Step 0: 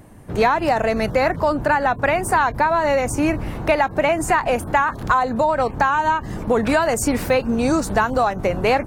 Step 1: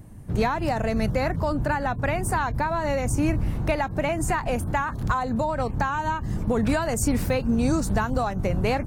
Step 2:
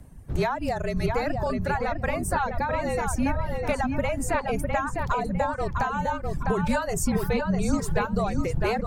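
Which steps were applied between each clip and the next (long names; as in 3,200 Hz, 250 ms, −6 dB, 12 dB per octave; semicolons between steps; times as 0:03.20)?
bass and treble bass +12 dB, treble +5 dB; level −8.5 dB
frequency shifter −43 Hz; feedback echo with a low-pass in the loop 654 ms, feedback 41%, low-pass 3,800 Hz, level −3.5 dB; reverb reduction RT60 1.1 s; level −1.5 dB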